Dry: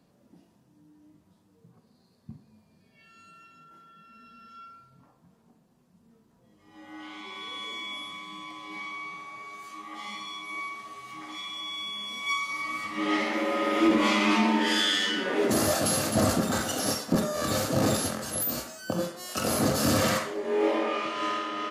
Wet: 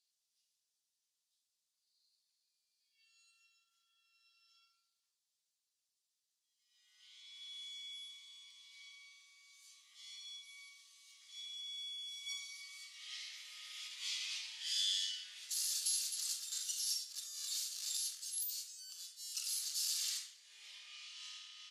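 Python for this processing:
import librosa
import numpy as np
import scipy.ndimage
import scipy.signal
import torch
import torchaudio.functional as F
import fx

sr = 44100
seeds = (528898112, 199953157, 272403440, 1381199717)

y = fx.ladder_bandpass(x, sr, hz=5000.0, resonance_pct=25)
y = np.diff(y, prepend=0.0)
y = y * librosa.db_to_amplitude(8.0)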